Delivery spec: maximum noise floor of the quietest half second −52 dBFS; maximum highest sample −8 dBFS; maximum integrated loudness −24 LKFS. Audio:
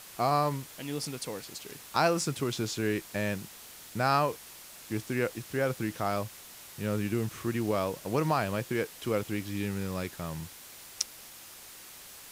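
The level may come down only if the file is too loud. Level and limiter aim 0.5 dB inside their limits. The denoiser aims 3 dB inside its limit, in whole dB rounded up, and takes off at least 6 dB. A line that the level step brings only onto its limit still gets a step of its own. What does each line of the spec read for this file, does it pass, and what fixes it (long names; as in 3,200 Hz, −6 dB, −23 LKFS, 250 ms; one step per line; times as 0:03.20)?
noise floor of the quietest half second −49 dBFS: out of spec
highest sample −7.0 dBFS: out of spec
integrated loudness −32.0 LKFS: in spec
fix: broadband denoise 6 dB, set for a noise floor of −49 dBFS
brickwall limiter −8.5 dBFS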